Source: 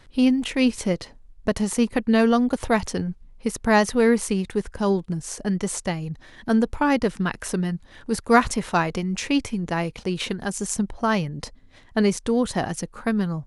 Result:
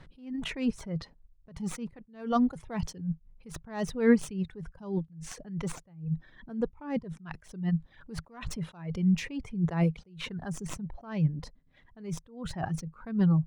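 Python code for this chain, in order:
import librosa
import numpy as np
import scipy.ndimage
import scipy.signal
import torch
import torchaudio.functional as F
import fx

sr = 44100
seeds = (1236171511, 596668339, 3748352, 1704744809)

y = fx.tracing_dist(x, sr, depth_ms=0.055)
y = fx.lowpass(y, sr, hz=fx.steps((0.0, 2100.0), (5.72, 1000.0), (7.13, 1700.0)), slope=6)
y = fx.dereverb_blind(y, sr, rt60_s=1.3)
y = fx.peak_eq(y, sr, hz=160.0, db=12.5, octaves=0.36)
y = fx.attack_slew(y, sr, db_per_s=130.0)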